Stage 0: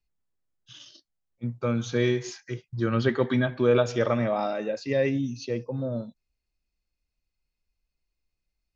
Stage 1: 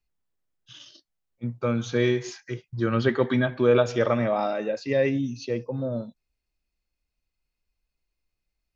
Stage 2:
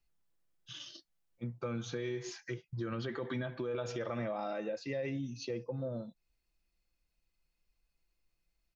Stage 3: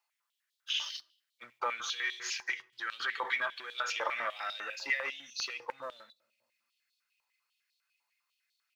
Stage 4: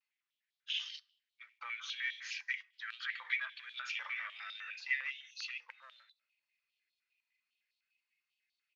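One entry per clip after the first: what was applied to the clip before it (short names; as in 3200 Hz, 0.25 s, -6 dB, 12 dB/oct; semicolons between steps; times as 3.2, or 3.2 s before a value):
tone controls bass -2 dB, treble -3 dB; gain +2 dB
comb 5.9 ms, depth 32%; limiter -18.5 dBFS, peak gain reduction 10.5 dB; compressor 2:1, threshold -43 dBFS, peak gain reduction 11 dB
sample leveller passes 1; reverb RT60 0.90 s, pre-delay 7 ms, DRR 17.5 dB; stepped high-pass 10 Hz 930–3800 Hz; gain +4.5 dB
vibrato 0.39 Hz 28 cents; ladder band-pass 2700 Hz, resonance 35%; gain +6 dB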